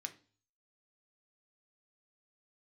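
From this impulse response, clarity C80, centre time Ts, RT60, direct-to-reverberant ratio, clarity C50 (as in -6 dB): 21.0 dB, 6 ms, 0.40 s, 5.5 dB, 15.5 dB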